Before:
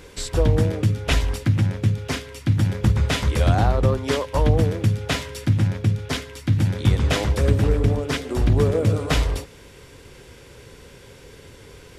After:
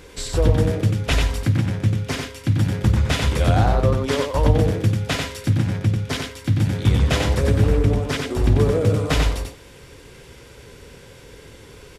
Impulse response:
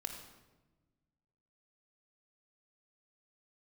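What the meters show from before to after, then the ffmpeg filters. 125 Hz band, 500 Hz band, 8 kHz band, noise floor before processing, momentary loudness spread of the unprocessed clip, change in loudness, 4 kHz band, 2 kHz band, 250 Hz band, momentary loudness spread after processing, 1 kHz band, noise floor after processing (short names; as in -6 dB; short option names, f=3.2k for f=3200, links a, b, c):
+1.0 dB, +1.5 dB, +1.5 dB, -46 dBFS, 7 LU, +1.0 dB, +1.5 dB, +1.5 dB, +1.5 dB, 7 LU, +1.5 dB, -44 dBFS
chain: -af "aecho=1:1:92:0.631"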